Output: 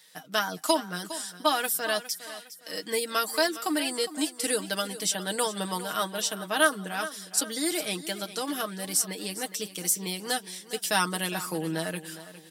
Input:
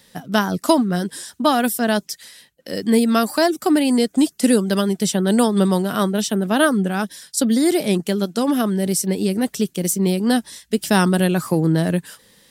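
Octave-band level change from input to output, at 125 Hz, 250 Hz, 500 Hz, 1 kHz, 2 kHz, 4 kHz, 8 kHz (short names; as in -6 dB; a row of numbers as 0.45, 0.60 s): -18.0, -17.5, -10.5, -7.0, -4.0, -2.5, -2.5 dB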